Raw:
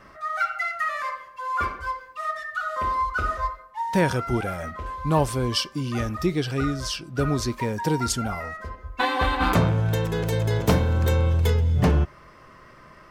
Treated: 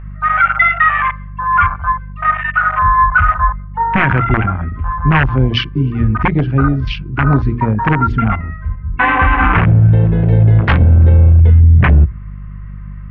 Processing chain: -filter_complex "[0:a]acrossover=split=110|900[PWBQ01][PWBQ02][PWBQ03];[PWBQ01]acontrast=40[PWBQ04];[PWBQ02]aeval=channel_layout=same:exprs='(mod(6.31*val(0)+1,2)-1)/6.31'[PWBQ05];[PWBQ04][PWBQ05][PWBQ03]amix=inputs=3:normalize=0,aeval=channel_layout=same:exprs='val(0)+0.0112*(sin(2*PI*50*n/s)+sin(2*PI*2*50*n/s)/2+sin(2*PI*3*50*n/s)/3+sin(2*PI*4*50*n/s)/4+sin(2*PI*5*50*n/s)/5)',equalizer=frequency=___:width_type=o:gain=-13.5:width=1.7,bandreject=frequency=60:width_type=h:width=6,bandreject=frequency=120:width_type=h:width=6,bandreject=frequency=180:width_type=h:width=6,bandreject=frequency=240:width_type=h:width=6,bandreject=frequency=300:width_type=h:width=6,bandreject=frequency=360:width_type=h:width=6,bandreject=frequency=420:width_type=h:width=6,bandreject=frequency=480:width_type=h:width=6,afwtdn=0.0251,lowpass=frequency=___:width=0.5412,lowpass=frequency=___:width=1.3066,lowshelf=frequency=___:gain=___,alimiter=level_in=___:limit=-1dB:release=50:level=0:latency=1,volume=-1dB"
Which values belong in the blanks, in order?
520, 2.4k, 2.4k, 150, -8, 21dB